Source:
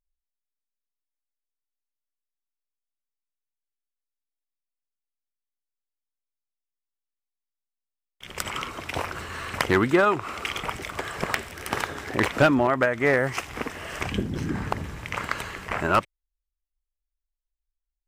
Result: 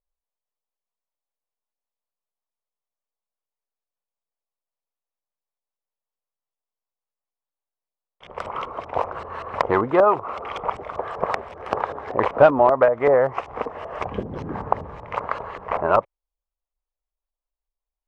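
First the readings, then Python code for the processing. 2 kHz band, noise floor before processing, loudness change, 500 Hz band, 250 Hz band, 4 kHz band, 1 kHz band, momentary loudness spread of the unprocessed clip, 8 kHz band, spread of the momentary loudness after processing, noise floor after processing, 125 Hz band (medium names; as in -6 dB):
-5.0 dB, under -85 dBFS, +3.5 dB, +7.0 dB, -3.0 dB, -9.5 dB, +5.5 dB, 13 LU, under -15 dB, 15 LU, under -85 dBFS, -4.0 dB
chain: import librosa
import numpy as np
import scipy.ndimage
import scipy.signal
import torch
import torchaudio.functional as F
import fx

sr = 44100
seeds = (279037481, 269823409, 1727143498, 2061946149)

y = fx.band_shelf(x, sr, hz=720.0, db=12.5, octaves=1.7)
y = fx.filter_lfo_lowpass(y, sr, shape='saw_up', hz=5.2, low_hz=610.0, high_hz=5000.0, q=0.74)
y = y * librosa.db_to_amplitude(-4.0)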